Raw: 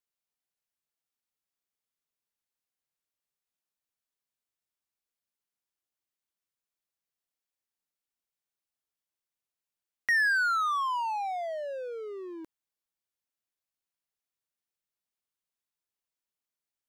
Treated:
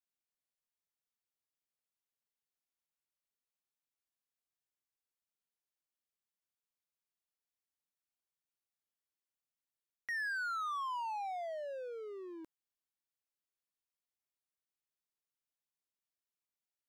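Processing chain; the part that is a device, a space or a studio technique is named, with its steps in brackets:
compression on the reversed sound (reversed playback; downward compressor, threshold −29 dBFS, peak gain reduction 7 dB; reversed playback)
level −6.5 dB

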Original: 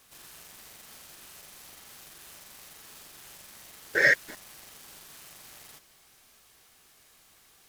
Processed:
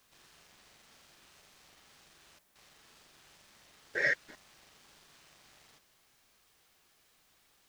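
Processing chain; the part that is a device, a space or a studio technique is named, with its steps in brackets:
worn cassette (low-pass filter 6,000 Hz 12 dB per octave; tape wow and flutter; tape dropouts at 0:02.39, 163 ms −11 dB; white noise bed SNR 27 dB)
level −8.5 dB

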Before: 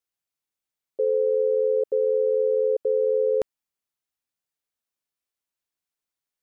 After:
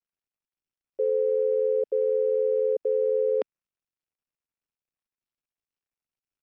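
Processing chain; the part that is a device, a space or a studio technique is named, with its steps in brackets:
Bluetooth headset (high-pass filter 240 Hz 24 dB per octave; downsampling to 8,000 Hz; level −2 dB; SBC 64 kbit/s 44,100 Hz)

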